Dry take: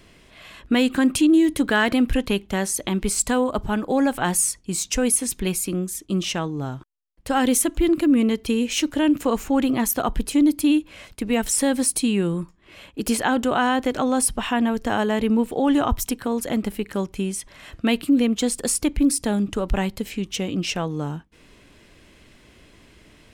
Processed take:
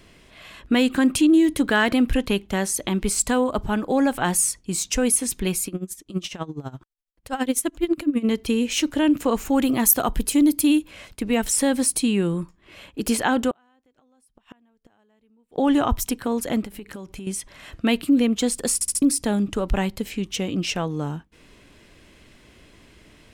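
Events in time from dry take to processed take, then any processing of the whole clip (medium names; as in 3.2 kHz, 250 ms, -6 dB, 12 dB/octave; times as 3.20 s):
5.67–8.25 s: logarithmic tremolo 12 Hz, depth 19 dB
9.45–10.91 s: treble shelf 7.8 kHz +11 dB
13.50–15.58 s: inverted gate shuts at -17 dBFS, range -41 dB
16.63–17.27 s: compression 10:1, threshold -32 dBFS
18.74 s: stutter in place 0.07 s, 4 plays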